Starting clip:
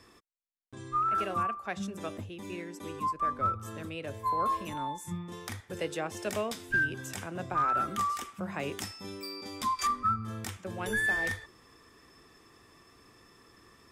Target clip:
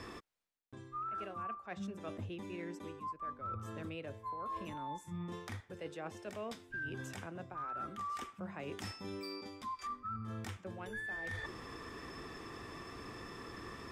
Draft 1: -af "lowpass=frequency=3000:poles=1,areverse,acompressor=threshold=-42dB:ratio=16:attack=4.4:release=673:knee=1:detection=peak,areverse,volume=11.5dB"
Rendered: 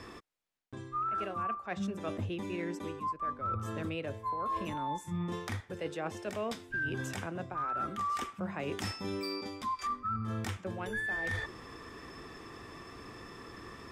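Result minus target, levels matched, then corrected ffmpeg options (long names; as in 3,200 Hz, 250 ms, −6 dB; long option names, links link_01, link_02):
downward compressor: peak gain reduction −7 dB
-af "lowpass=frequency=3000:poles=1,areverse,acompressor=threshold=-49.5dB:ratio=16:attack=4.4:release=673:knee=1:detection=peak,areverse,volume=11.5dB"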